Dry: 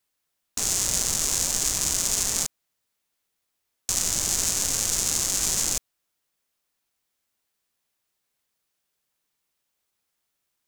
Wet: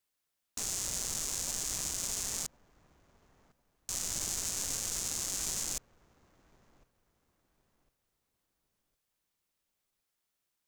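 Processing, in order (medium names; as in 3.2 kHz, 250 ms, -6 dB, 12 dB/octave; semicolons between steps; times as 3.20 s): peak limiter -12.5 dBFS, peak gain reduction 7.5 dB; feedback echo behind a low-pass 1056 ms, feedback 31%, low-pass 1.5 kHz, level -19 dB; trim -5.5 dB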